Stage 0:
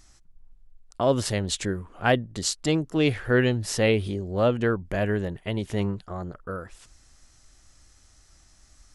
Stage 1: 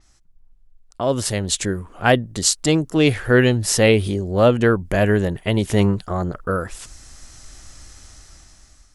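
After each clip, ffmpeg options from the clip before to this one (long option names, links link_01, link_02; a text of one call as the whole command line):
ffmpeg -i in.wav -af "dynaudnorm=framelen=540:gausssize=5:maxgain=16.5dB,adynamicequalizer=threshold=0.0112:dfrequency=6100:dqfactor=0.7:tfrequency=6100:tqfactor=0.7:attack=5:release=100:ratio=0.375:range=3.5:mode=boostabove:tftype=highshelf,volume=-1dB" out.wav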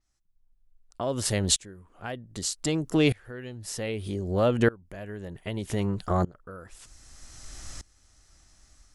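ffmpeg -i in.wav -af "acompressor=threshold=-23dB:ratio=2.5,aeval=exprs='val(0)*pow(10,-24*if(lt(mod(-0.64*n/s,1),2*abs(-0.64)/1000),1-mod(-0.64*n/s,1)/(2*abs(-0.64)/1000),(mod(-0.64*n/s,1)-2*abs(-0.64)/1000)/(1-2*abs(-0.64)/1000))/20)':channel_layout=same,volume=3dB" out.wav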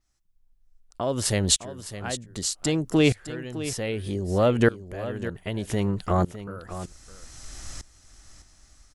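ffmpeg -i in.wav -af "aecho=1:1:608:0.224,volume=2.5dB" out.wav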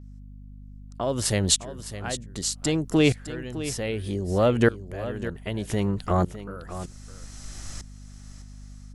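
ffmpeg -i in.wav -af "aeval=exprs='val(0)+0.00794*(sin(2*PI*50*n/s)+sin(2*PI*2*50*n/s)/2+sin(2*PI*3*50*n/s)/3+sin(2*PI*4*50*n/s)/4+sin(2*PI*5*50*n/s)/5)':channel_layout=same" out.wav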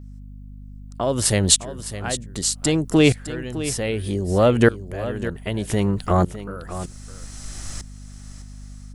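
ffmpeg -i in.wav -af "aexciter=amount=1.5:drive=2.5:freq=8300,volume=4.5dB" out.wav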